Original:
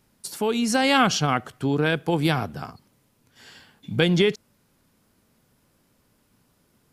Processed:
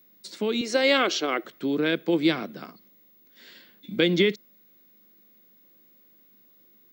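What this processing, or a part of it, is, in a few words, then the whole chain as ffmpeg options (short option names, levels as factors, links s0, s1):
old television with a line whistle: -filter_complex "[0:a]highpass=f=190:w=0.5412,highpass=f=190:w=1.3066,equalizer=f=200:t=q:w=4:g=7,equalizer=f=330:t=q:w=4:g=9,equalizer=f=550:t=q:w=4:g=6,equalizer=f=820:t=q:w=4:g=-8,equalizer=f=2100:t=q:w=4:g=8,equalizer=f=3800:t=q:w=4:g=9,lowpass=f=7100:w=0.5412,lowpass=f=7100:w=1.3066,aeval=exprs='val(0)+0.00316*sin(2*PI*15625*n/s)':c=same,asettb=1/sr,asplit=3[s0][s1][s2];[s0]atrim=end=0.614[s3];[s1]atrim=start=0.61:end=1.44,asetpts=PTS-STARTPTS,afade=t=in:d=0.004:c=qsin,afade=t=out:st=0.826:d=0.004:c=qsin,lowshelf=f=260:t=q:w=3:g=-11[s4];[s2]atrim=start=1.436[s5];[s3][s4]acrossfade=d=0.004:c1=hsin:c2=qsin[s6];[s6][s5]acrossfade=d=0.004:c1=qsin:c2=hsin,volume=0.531"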